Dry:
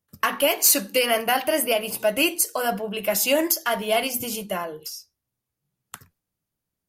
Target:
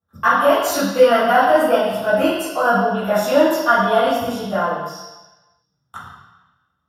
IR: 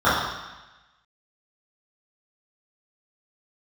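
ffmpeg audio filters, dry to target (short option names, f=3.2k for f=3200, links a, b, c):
-filter_complex "[1:a]atrim=start_sample=2205[a];[0:a][a]afir=irnorm=-1:irlink=0,volume=-14.5dB"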